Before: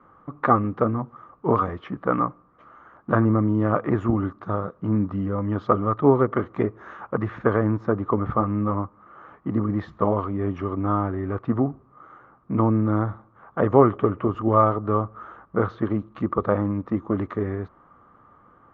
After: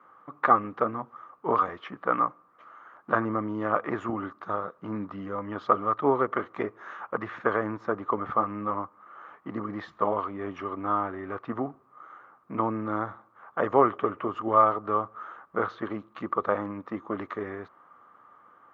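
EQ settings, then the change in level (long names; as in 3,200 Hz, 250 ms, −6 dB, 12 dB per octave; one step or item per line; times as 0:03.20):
high-pass filter 1,000 Hz 6 dB per octave
+2.0 dB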